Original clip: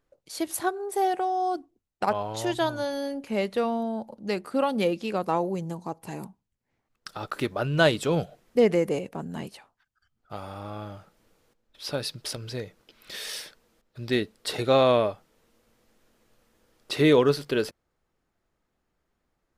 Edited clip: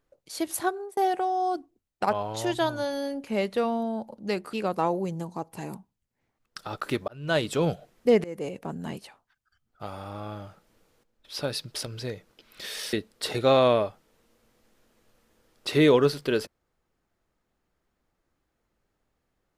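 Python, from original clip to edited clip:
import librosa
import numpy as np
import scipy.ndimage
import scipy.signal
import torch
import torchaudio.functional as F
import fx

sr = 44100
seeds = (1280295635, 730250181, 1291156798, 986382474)

y = fx.edit(x, sr, fx.fade_out_span(start_s=0.68, length_s=0.29, curve='qsin'),
    fx.cut(start_s=4.53, length_s=0.5),
    fx.fade_in_span(start_s=7.58, length_s=0.47),
    fx.fade_in_from(start_s=8.74, length_s=0.39, floor_db=-22.5),
    fx.cut(start_s=13.43, length_s=0.74), tone=tone)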